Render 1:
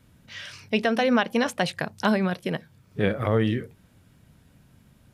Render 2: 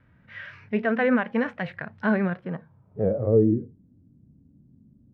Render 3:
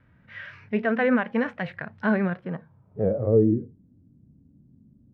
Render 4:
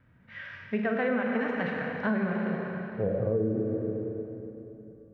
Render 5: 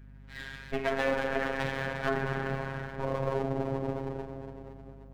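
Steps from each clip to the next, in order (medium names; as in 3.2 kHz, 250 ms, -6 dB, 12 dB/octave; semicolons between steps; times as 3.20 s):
vibrato 6.4 Hz 49 cents; low-pass sweep 1.8 kHz -> 280 Hz, 2.27–3.69 s; harmonic-percussive split percussive -11 dB
no audible change
Schroeder reverb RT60 3.2 s, combs from 33 ms, DRR 0.5 dB; compression 6:1, threshold -21 dBFS, peak gain reduction 8.5 dB; trim -3 dB
comb filter that takes the minimum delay 6.2 ms; robot voice 135 Hz; hum 50 Hz, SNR 17 dB; trim +3 dB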